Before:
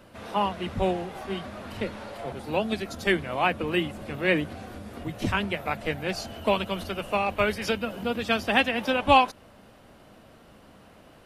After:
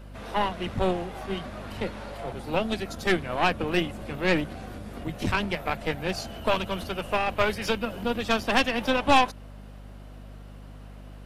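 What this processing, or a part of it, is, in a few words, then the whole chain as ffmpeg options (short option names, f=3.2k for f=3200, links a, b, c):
valve amplifier with mains hum: -af "aeval=exprs='(tanh(7.94*val(0)+0.75)-tanh(0.75))/7.94':c=same,aeval=exprs='val(0)+0.00447*(sin(2*PI*50*n/s)+sin(2*PI*2*50*n/s)/2+sin(2*PI*3*50*n/s)/3+sin(2*PI*4*50*n/s)/4+sin(2*PI*5*50*n/s)/5)':c=same,volume=4.5dB"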